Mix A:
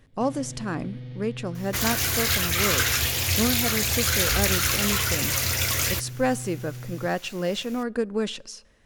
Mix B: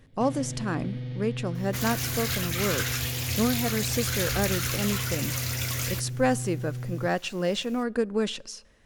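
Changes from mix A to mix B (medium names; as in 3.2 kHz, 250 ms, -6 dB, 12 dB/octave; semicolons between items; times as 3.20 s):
first sound +3.5 dB; second sound -7.0 dB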